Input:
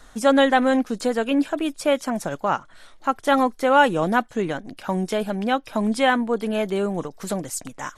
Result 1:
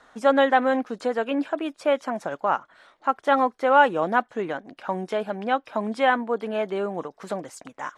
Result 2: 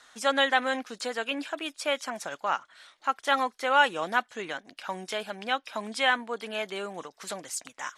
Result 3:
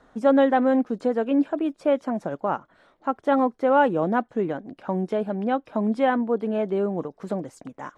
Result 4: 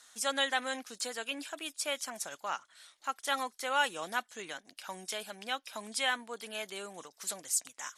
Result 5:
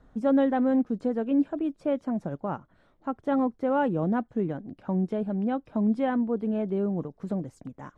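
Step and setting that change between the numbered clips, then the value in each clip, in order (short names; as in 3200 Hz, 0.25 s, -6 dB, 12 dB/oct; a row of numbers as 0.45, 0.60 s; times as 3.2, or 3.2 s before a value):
band-pass, frequency: 930, 3100, 370, 7900, 130 Hz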